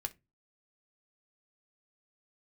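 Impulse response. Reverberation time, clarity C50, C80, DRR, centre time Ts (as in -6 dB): not exponential, 21.0 dB, 31.0 dB, 7.0 dB, 4 ms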